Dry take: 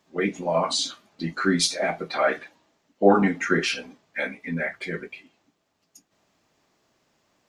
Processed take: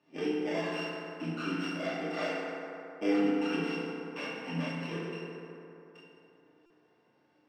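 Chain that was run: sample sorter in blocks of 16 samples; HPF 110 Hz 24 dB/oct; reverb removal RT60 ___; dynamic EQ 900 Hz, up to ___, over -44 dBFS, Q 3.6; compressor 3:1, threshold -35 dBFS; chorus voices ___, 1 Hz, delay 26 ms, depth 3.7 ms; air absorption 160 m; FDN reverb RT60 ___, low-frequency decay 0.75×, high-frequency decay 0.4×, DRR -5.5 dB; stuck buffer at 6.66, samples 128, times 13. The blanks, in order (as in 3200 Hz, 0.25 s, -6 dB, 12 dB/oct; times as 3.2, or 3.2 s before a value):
1.1 s, -5 dB, 4, 3.3 s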